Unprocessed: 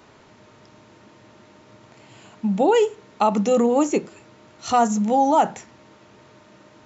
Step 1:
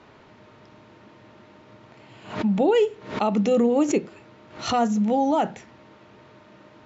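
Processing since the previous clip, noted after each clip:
low-pass filter 4,000 Hz 12 dB per octave
dynamic equaliser 1,000 Hz, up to −8 dB, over −33 dBFS, Q 1.2
background raised ahead of every attack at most 120 dB per second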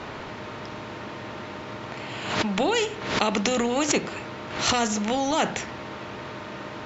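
every bin compressed towards the loudest bin 2 to 1
level +5.5 dB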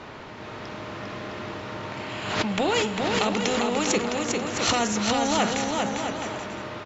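automatic gain control gain up to 4 dB
on a send: bouncing-ball delay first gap 400 ms, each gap 0.65×, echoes 5
on the sum: level −4.5 dB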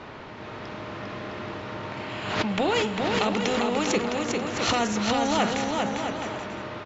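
high-frequency loss of the air 73 metres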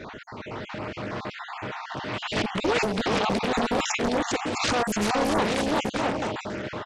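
time-frequency cells dropped at random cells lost 36%
brickwall limiter −18.5 dBFS, peak gain reduction 9 dB
highs frequency-modulated by the lows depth 0.87 ms
level +4 dB

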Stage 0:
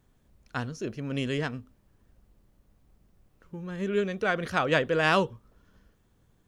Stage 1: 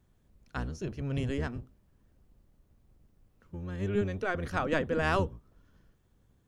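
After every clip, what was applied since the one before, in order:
sub-octave generator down 1 octave, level +2 dB
dynamic equaliser 3,300 Hz, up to −6 dB, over −43 dBFS, Q 1.1
level −4.5 dB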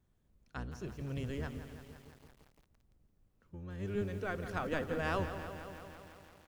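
repeating echo 256 ms, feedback 32%, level −17 dB
feedback echo at a low word length 169 ms, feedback 80%, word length 8 bits, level −10.5 dB
level −7 dB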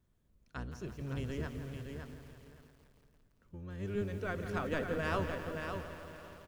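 notch filter 790 Hz, Q 12
on a send: repeating echo 565 ms, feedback 16%, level −6 dB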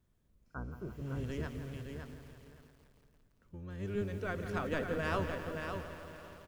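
healed spectral selection 0:00.48–0:01.21, 1,600–11,000 Hz both

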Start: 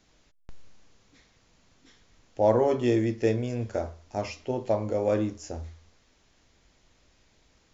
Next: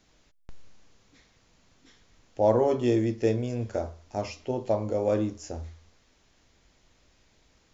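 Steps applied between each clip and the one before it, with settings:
dynamic equaliser 1,900 Hz, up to −4 dB, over −48 dBFS, Q 1.4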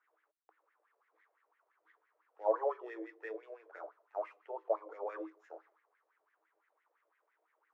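running median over 9 samples
LFO wah 5.9 Hz 580–2,000 Hz, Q 5.4
Chebyshev high-pass with heavy ripple 310 Hz, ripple 9 dB
level +5.5 dB

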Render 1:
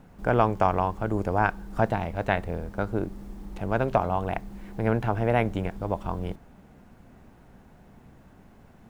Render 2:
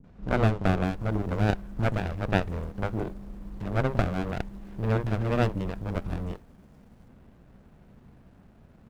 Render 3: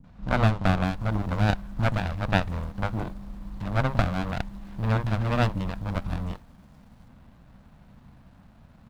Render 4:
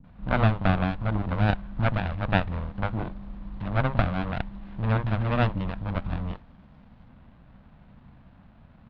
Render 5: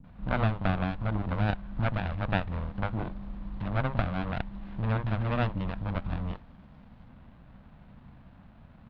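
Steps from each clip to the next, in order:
three-band delay without the direct sound lows, mids, highs 40/730 ms, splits 350/5,800 Hz; windowed peak hold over 33 samples
graphic EQ with 15 bands 400 Hz −11 dB, 1,000 Hz +3 dB, 4,000 Hz +4 dB; level +2.5 dB
low-pass filter 3,700 Hz 24 dB per octave
downward compressor 1.5 to 1, threshold −31 dBFS, peak gain reduction 6 dB

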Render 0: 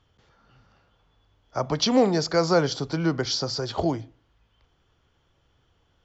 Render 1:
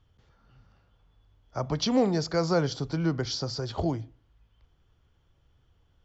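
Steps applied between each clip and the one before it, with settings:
low-shelf EQ 150 Hz +11 dB
level −6 dB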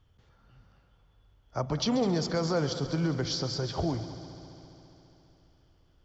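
brickwall limiter −19.5 dBFS, peak gain reduction 6 dB
echo machine with several playback heads 68 ms, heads second and third, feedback 71%, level −14.5 dB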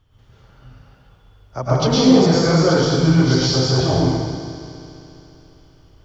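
dense smooth reverb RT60 1.3 s, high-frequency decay 1×, pre-delay 95 ms, DRR −8.5 dB
level +4.5 dB

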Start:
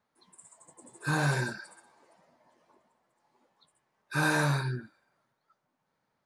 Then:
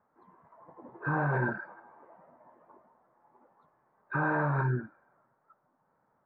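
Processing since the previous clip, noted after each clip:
low-pass filter 1,400 Hz 24 dB per octave
low-shelf EQ 450 Hz −5.5 dB
in parallel at +1 dB: compressor whose output falls as the input rises −36 dBFS, ratio −0.5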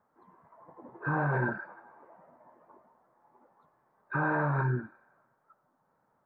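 feedback echo with a high-pass in the loop 91 ms, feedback 66%, high-pass 750 Hz, level −20 dB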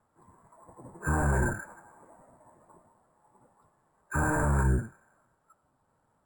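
sub-octave generator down 1 octave, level +3 dB
decimation without filtering 5×

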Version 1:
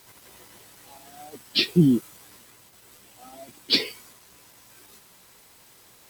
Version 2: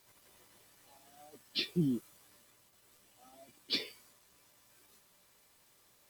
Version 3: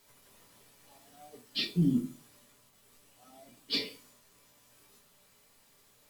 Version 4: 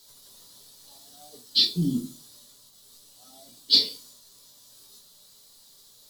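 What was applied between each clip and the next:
tuned comb filter 590 Hz, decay 0.2 s, harmonics all, mix 70%; level −4 dB
convolution reverb RT60 0.35 s, pre-delay 4 ms, DRR 1 dB
high shelf with overshoot 3,100 Hz +8.5 dB, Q 3; level +1 dB

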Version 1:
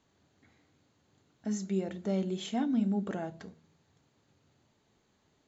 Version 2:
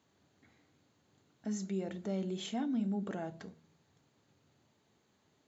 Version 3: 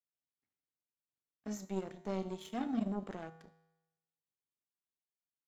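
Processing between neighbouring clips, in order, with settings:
high-pass filter 83 Hz; in parallel at +2.5 dB: brickwall limiter −31.5 dBFS, peak gain reduction 11.5 dB; on the sum: level −8.5 dB
power curve on the samples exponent 2; tuned comb filter 54 Hz, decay 0.99 s, harmonics odd, mix 60%; level +10 dB

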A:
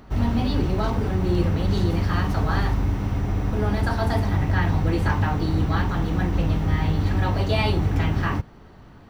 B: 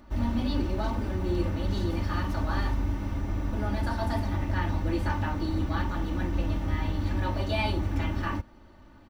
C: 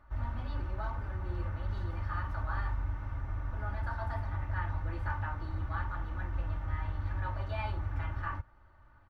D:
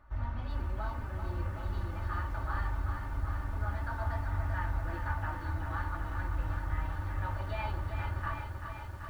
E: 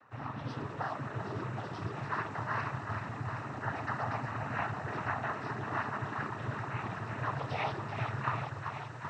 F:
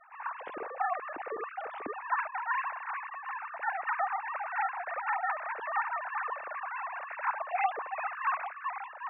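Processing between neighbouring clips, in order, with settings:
comb filter 3.4 ms, depth 68%; level −7.5 dB
drawn EQ curve 120 Hz 0 dB, 230 Hz −16 dB, 1,400 Hz +4 dB, 2,800 Hz −9 dB, 6,400 Hz −16 dB; level −5.5 dB
feedback echo at a low word length 386 ms, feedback 80%, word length 10 bits, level −7 dB
cochlear-implant simulation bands 12; level +4.5 dB
three sine waves on the formant tracks; level +2 dB

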